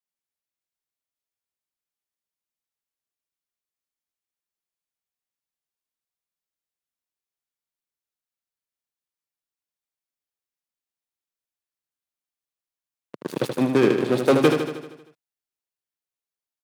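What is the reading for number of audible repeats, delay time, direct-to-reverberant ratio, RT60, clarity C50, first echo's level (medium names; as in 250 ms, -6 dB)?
7, 78 ms, no reverb, no reverb, no reverb, -6.0 dB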